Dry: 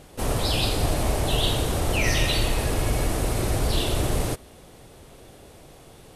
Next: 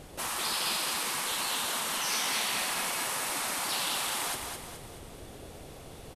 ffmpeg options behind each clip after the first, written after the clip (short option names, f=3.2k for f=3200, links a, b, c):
-af "afftfilt=real='re*lt(hypot(re,im),0.0891)':imag='im*lt(hypot(re,im),0.0891)':win_size=1024:overlap=0.75,aecho=1:1:211|422|633|844|1055:0.531|0.234|0.103|0.0452|0.0199"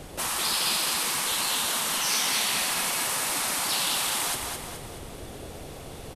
-filter_complex "[0:a]acrossover=split=220|3000[a][b][c];[b]acompressor=threshold=-42dB:ratio=1.5[d];[a][d][c]amix=inputs=3:normalize=0,volume=6dB"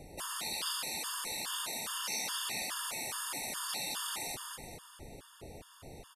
-af "afftfilt=real='re*gt(sin(2*PI*2.4*pts/sr)*(1-2*mod(floor(b*sr/1024/910),2)),0)':imag='im*gt(sin(2*PI*2.4*pts/sr)*(1-2*mod(floor(b*sr/1024/910),2)),0)':win_size=1024:overlap=0.75,volume=-8dB"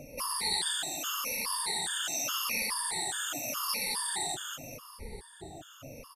-af "afftfilt=real='re*pow(10,21/40*sin(2*PI*(0.89*log(max(b,1)*sr/1024/100)/log(2)-(-0.85)*(pts-256)/sr)))':imag='im*pow(10,21/40*sin(2*PI*(0.89*log(max(b,1)*sr/1024/100)/log(2)-(-0.85)*(pts-256)/sr)))':win_size=1024:overlap=0.75"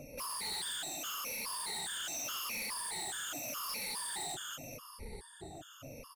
-af "asoftclip=type=tanh:threshold=-34dB,volume=-2dB"